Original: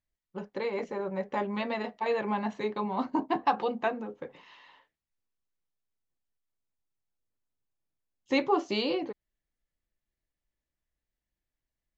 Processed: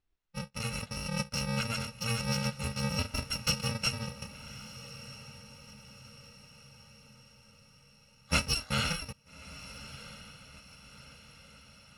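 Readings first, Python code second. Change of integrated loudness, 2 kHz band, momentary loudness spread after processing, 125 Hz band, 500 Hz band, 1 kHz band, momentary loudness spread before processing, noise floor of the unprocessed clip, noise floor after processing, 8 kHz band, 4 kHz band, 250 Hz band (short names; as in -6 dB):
-2.5 dB, +2.0 dB, 21 LU, +12.5 dB, -11.5 dB, -9.5 dB, 13 LU, under -85 dBFS, -62 dBFS, n/a, +7.5 dB, -5.0 dB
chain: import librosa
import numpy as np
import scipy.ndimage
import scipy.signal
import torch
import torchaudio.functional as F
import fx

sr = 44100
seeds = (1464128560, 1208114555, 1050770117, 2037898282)

y = fx.bit_reversed(x, sr, seeds[0], block=128)
y = scipy.signal.sosfilt(scipy.signal.butter(2, 3700.0, 'lowpass', fs=sr, output='sos'), y)
y = fx.echo_diffused(y, sr, ms=1273, feedback_pct=52, wet_db=-15)
y = F.gain(torch.from_numpy(y), 8.0).numpy()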